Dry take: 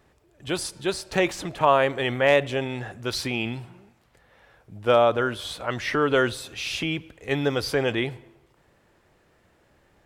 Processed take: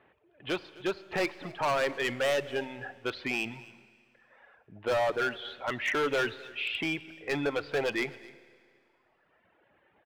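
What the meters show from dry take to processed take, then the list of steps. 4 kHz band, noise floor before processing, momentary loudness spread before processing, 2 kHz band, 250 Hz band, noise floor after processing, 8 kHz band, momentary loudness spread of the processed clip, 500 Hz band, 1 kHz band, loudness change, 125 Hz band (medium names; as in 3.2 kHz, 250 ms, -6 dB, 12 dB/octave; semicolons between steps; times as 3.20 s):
-6.5 dB, -63 dBFS, 12 LU, -4.0 dB, -7.5 dB, -70 dBFS, -10.5 dB, 9 LU, -7.5 dB, -8.0 dB, -7.0 dB, -12.5 dB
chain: steep low-pass 3.1 kHz 36 dB/octave; band-stop 1.2 kHz, Q 26; reverb removal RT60 1.8 s; high-pass 430 Hz 6 dB/octave; in parallel at +2.5 dB: peak limiter -15.5 dBFS, peak gain reduction 7.5 dB; on the sum: overload inside the chain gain 18.5 dB; delay 258 ms -21 dB; Schroeder reverb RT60 2.1 s, combs from 28 ms, DRR 17.5 dB; trim -6 dB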